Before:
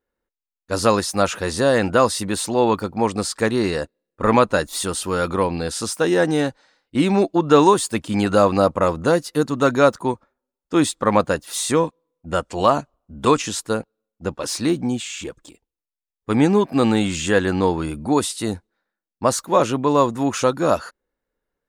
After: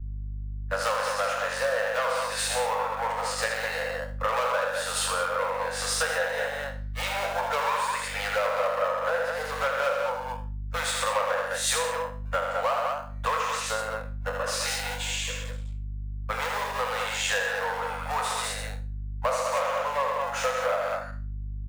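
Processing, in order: spectral trails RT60 0.39 s; high shelf 2900 Hz -6.5 dB; in parallel at -10 dB: decimation with a swept rate 30×, swing 60% 0.36 Hz; on the sum: bell 1700 Hz +7.5 dB 1.2 oct; overloaded stage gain 10.5 dB; steep high-pass 490 Hz 96 dB/oct; on a send: loudspeakers at several distances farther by 27 m -4 dB, 46 m -6 dB, 70 m -4 dB; on the sum: hum 50 Hz, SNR 14 dB; compressor 5:1, threshold -25 dBFS, peak gain reduction 14 dB; three-band expander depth 100%

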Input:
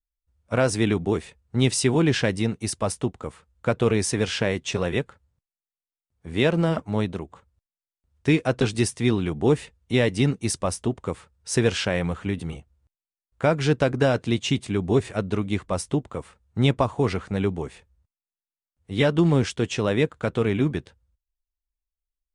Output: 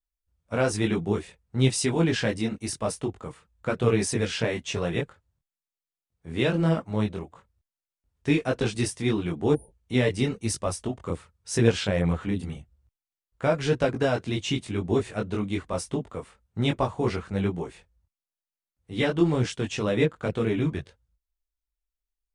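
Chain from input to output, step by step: chorus voices 4, 0.93 Hz, delay 21 ms, depth 3.5 ms; spectral repair 9.57–9.81, 920–8900 Hz after

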